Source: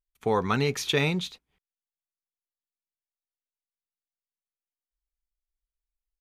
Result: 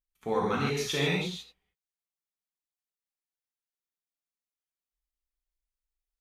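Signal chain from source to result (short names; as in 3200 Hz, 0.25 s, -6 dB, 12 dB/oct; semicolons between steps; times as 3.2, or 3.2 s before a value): non-linear reverb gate 0.18 s flat, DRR -4.5 dB; gain -8.5 dB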